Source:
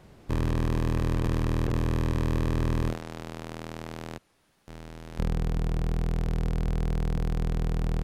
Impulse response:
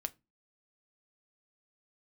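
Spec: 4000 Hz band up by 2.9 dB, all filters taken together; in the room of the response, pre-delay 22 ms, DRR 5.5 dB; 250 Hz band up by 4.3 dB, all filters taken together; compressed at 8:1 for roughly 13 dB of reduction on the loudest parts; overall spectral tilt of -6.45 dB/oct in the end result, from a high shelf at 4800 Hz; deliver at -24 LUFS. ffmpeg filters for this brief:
-filter_complex "[0:a]equalizer=f=250:t=o:g=6,equalizer=f=4k:t=o:g=6,highshelf=f=4.8k:g=-5,acompressor=threshold=-34dB:ratio=8,asplit=2[a][b];[1:a]atrim=start_sample=2205,adelay=22[c];[b][c]afir=irnorm=-1:irlink=0,volume=-4.5dB[d];[a][d]amix=inputs=2:normalize=0,volume=16dB"

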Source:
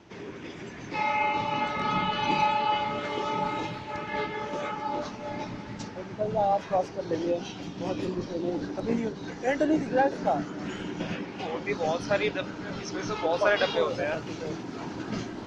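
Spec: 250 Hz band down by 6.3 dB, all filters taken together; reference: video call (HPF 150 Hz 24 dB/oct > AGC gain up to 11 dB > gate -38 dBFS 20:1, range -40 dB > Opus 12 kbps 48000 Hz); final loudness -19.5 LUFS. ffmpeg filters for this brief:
-af "highpass=f=150:w=0.5412,highpass=f=150:w=1.3066,equalizer=f=250:t=o:g=-8.5,dynaudnorm=m=11dB,agate=range=-40dB:threshold=-38dB:ratio=20,volume=11.5dB" -ar 48000 -c:a libopus -b:a 12k

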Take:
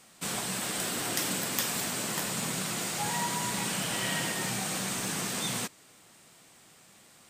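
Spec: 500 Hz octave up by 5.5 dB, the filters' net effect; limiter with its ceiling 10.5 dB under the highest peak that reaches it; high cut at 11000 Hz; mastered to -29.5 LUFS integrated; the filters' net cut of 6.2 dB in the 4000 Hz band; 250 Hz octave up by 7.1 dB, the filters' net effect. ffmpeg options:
-af "lowpass=11k,equalizer=f=250:t=o:g=8.5,equalizer=f=500:t=o:g=4.5,equalizer=f=4k:t=o:g=-8.5,volume=3dB,alimiter=limit=-20dB:level=0:latency=1"

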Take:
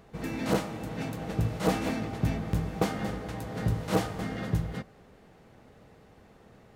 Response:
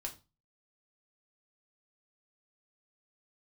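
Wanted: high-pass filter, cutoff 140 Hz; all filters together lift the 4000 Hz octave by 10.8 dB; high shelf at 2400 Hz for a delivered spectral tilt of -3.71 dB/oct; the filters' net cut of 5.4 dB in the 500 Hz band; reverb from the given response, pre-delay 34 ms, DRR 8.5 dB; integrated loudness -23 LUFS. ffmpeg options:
-filter_complex "[0:a]highpass=140,equalizer=f=500:t=o:g=-7,highshelf=f=2.4k:g=7.5,equalizer=f=4k:t=o:g=7,asplit=2[a][b];[1:a]atrim=start_sample=2205,adelay=34[c];[b][c]afir=irnorm=-1:irlink=0,volume=-7dB[d];[a][d]amix=inputs=2:normalize=0,volume=8.5dB"

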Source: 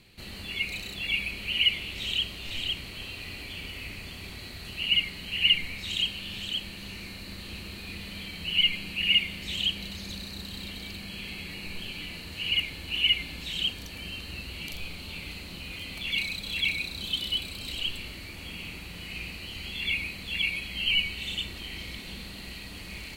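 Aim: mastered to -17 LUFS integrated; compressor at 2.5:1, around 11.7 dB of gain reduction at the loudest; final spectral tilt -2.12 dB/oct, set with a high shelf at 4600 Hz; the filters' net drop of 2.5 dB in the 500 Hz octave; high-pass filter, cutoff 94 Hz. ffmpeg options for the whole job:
-af "highpass=94,equalizer=f=500:t=o:g=-3.5,highshelf=f=4.6k:g=7.5,acompressor=threshold=-34dB:ratio=2.5,volume=17dB"

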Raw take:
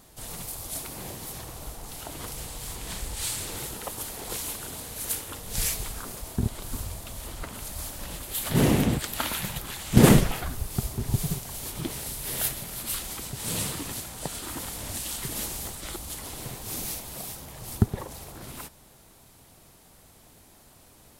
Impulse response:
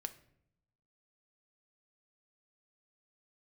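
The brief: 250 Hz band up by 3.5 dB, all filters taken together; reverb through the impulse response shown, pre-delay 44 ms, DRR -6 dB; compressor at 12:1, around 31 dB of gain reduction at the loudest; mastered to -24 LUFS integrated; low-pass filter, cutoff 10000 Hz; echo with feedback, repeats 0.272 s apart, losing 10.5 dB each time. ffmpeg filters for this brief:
-filter_complex "[0:a]lowpass=10k,equalizer=f=250:t=o:g=4.5,acompressor=threshold=-41dB:ratio=12,aecho=1:1:272|544|816:0.299|0.0896|0.0269,asplit=2[a][b];[1:a]atrim=start_sample=2205,adelay=44[c];[b][c]afir=irnorm=-1:irlink=0,volume=8.5dB[d];[a][d]amix=inputs=2:normalize=0,volume=13.5dB"

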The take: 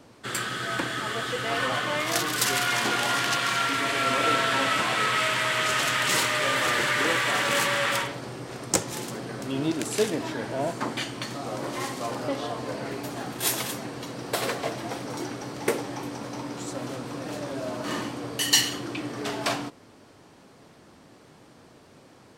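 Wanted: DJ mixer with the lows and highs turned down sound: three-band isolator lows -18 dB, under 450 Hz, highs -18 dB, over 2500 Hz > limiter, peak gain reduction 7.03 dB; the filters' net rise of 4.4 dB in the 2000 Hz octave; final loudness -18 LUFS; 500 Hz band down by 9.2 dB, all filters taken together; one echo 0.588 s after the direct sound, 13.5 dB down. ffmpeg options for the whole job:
-filter_complex "[0:a]acrossover=split=450 2500:gain=0.126 1 0.126[a][b][c];[a][b][c]amix=inputs=3:normalize=0,equalizer=f=500:t=o:g=-8.5,equalizer=f=2k:t=o:g=8.5,aecho=1:1:588:0.211,volume=9.5dB,alimiter=limit=-7dB:level=0:latency=1"

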